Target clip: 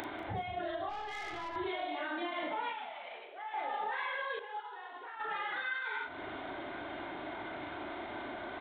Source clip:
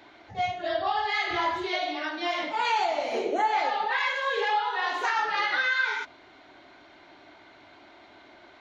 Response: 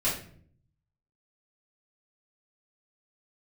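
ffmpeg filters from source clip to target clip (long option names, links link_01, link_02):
-filter_complex "[0:a]aresample=8000,aresample=44100,equalizer=frequency=2700:width=1.3:gain=-5.5,alimiter=level_in=9.5dB:limit=-24dB:level=0:latency=1:release=132,volume=-9.5dB,acompressor=mode=upward:threshold=-34dB:ratio=2.5,asettb=1/sr,asplit=3[link_01][link_02][link_03];[link_01]atrim=end=2.694[link_04];[link_02]atrim=start=2.69:end=3.54,asetpts=PTS-STARTPTS,afade=type=in:duration=0.004:curve=qsin,afade=type=out:start_time=0.846:duration=0.004:curve=qsin,highpass=1200[link_05];[link_03]atrim=start=3.536[link_06];[link_04][link_05]acrossfade=duration=0.004:curve1=hsin:curve2=qsin[link_07];[link_07][link_06]acrossfade=duration=0.004:curve1=qsin:curve2=hsin,asplit=2[link_08][link_09];[link_09]adelay=38,volume=-5dB[link_10];[link_08][link_10]amix=inputs=2:normalize=0,asettb=1/sr,asplit=3[link_11][link_12][link_13];[link_11]atrim=end=4.394[link_14];[link_12]atrim=start=4.39:end=5.2,asetpts=PTS-STARTPTS,afade=type=in:duration=0.004:curve=qsin,afade=type=out:start_time=0.806:duration=0.004:curve=qsin,agate=range=-33dB:threshold=-30dB:ratio=3:detection=peak[link_15];[link_13]atrim=start=5.196[link_16];[link_14][link_15]acrossfade=duration=0.004:curve1=hsin:curve2=qsin[link_17];[link_17][link_16]acrossfade=duration=0.004:curve1=qsin:curve2=hsin,asplit=4[link_18][link_19][link_20][link_21];[link_19]adelay=192,afreqshift=-31,volume=-17dB[link_22];[link_20]adelay=384,afreqshift=-62,volume=-24.7dB[link_23];[link_21]adelay=576,afreqshift=-93,volume=-32.5dB[link_24];[link_18][link_22][link_23][link_24]amix=inputs=4:normalize=0,asettb=1/sr,asplit=3[link_25][link_26][link_27];[link_25]atrim=end=0.894[link_28];[link_26]atrim=start=0.89:end=1.56,asetpts=PTS-STARTPTS,afade=type=in:duration=0.004:curve=qsin,afade=type=out:start_time=0.666:duration=0.004:curve=qsin,aeval=exprs='(tanh(79.4*val(0)+0.4)-tanh(0.4))/79.4':channel_layout=same[link_29];[link_27]atrim=start=1.556[link_30];[link_28][link_29]acrossfade=duration=0.004:curve1=hsin:curve2=qsin[link_31];[link_31][link_30]acrossfade=duration=0.004:curve1=qsin:curve2=hsin,volume=1dB"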